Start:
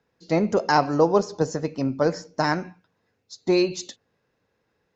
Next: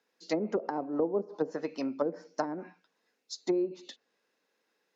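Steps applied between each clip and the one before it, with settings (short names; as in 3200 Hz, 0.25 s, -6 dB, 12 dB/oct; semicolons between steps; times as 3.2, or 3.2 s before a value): HPF 230 Hz 24 dB/oct; high shelf 2000 Hz +10 dB; treble ducked by the level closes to 410 Hz, closed at -16.5 dBFS; gain -7 dB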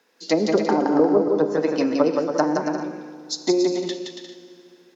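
in parallel at -1.5 dB: compressor, threshold -37 dBFS, peak gain reduction 12.5 dB; on the sum: bouncing-ball echo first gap 0.17 s, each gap 0.65×, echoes 5; FDN reverb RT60 2.7 s, low-frequency decay 1.25×, high-frequency decay 0.85×, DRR 10.5 dB; gain +8 dB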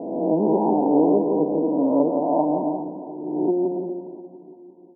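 spectral swells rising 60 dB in 1.34 s; rippled Chebyshev low-pass 1000 Hz, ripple 6 dB; feedback echo 0.351 s, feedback 56%, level -17 dB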